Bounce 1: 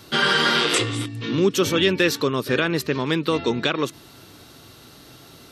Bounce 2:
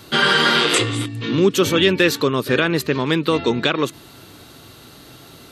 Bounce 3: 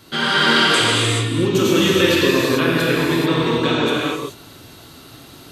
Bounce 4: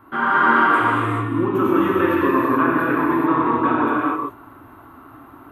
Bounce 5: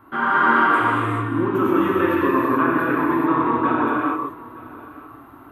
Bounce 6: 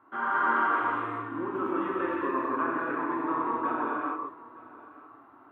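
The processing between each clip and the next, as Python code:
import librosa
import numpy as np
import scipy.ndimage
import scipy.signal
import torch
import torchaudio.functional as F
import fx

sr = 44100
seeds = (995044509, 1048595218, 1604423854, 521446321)

y1 = fx.peak_eq(x, sr, hz=5500.0, db=-6.0, octaves=0.2)
y1 = F.gain(torch.from_numpy(y1), 3.5).numpy()
y2 = fx.rev_gated(y1, sr, seeds[0], gate_ms=460, shape='flat', drr_db=-6.5)
y2 = F.gain(torch.from_numpy(y2), -6.0).numpy()
y3 = fx.curve_eq(y2, sr, hz=(110.0, 160.0, 290.0, 480.0, 1100.0, 2600.0, 4500.0, 8100.0, 12000.0), db=(0, -8, 7, -4, 13, -10, -30, -25, -7))
y3 = F.gain(torch.from_numpy(y3), -4.0).numpy()
y4 = y3 + 10.0 ** (-20.0 / 20.0) * np.pad(y3, (int(917 * sr / 1000.0), 0))[:len(y3)]
y4 = F.gain(torch.from_numpy(y4), -1.0).numpy()
y5 = fx.bandpass_q(y4, sr, hz=850.0, q=0.59)
y5 = F.gain(torch.from_numpy(y5), -8.0).numpy()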